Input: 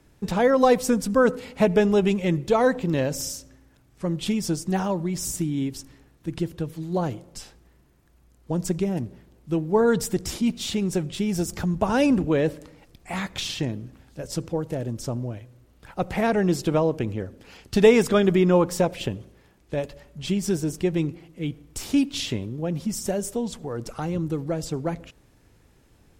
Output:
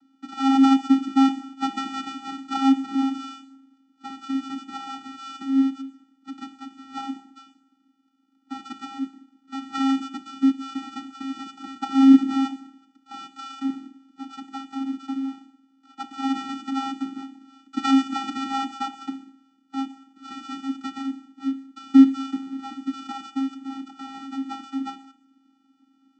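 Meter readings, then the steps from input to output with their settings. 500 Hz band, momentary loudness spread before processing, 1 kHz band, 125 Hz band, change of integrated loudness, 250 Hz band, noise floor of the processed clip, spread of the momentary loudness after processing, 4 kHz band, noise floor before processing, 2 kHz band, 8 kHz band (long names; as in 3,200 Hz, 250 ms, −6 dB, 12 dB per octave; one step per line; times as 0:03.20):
below −30 dB, 14 LU, +1.0 dB, below −25 dB, 0.0 dB, +3.0 dB, −65 dBFS, 21 LU, −2.0 dB, −58 dBFS, −7.0 dB, below −10 dB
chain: samples sorted by size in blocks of 32 samples
reverb whose tail is shaped and stops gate 250 ms falling, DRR 11 dB
channel vocoder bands 16, square 269 Hz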